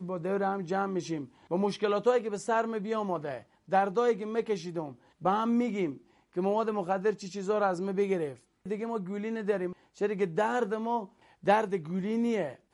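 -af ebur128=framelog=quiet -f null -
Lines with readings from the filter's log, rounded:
Integrated loudness:
  I:         -30.7 LUFS
  Threshold: -40.9 LUFS
Loudness range:
  LRA:         2.1 LU
  Threshold: -51.0 LUFS
  LRA low:   -32.0 LUFS
  LRA high:  -29.9 LUFS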